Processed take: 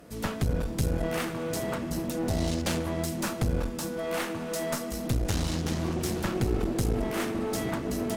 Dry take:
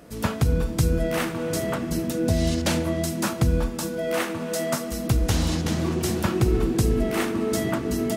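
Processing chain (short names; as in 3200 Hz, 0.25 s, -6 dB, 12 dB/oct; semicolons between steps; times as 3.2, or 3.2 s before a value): one-sided clip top -29.5 dBFS; gain -3 dB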